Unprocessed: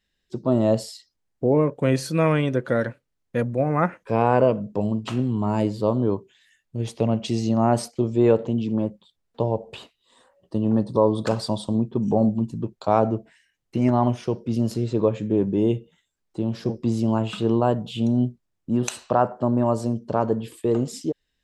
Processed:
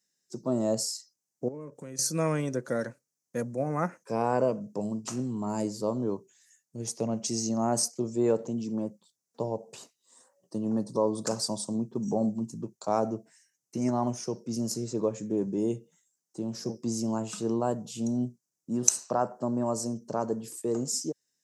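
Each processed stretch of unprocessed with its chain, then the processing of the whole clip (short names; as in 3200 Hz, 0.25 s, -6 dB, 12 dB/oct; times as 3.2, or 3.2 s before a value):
1.48–1.99 bell 730 Hz -6.5 dB 0.39 oct + compressor 3:1, threshold -34 dBFS
whole clip: HPF 130 Hz 24 dB/oct; resonant high shelf 4500 Hz +11 dB, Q 3; gain -7.5 dB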